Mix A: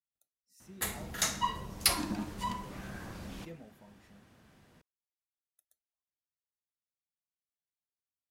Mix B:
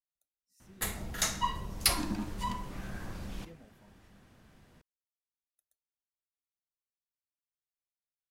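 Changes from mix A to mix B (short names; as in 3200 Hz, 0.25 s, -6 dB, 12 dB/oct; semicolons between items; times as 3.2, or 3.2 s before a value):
speech -6.0 dB; master: remove HPF 92 Hz 6 dB/oct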